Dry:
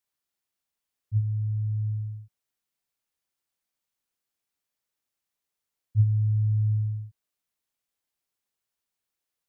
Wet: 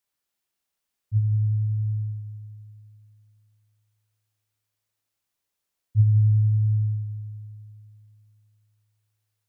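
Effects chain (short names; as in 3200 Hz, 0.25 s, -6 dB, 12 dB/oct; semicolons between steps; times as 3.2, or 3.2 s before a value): multi-head echo 85 ms, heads first and second, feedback 72%, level -13 dB; gain +2.5 dB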